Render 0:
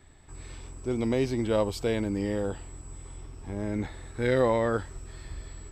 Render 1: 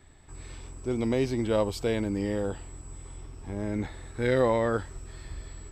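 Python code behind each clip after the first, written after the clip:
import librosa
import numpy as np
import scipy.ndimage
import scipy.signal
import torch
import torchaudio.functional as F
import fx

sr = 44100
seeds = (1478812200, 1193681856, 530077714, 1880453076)

y = x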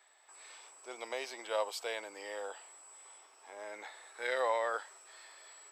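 y = scipy.signal.sosfilt(scipy.signal.butter(4, 620.0, 'highpass', fs=sr, output='sos'), x)
y = y * 10.0 ** (-2.5 / 20.0)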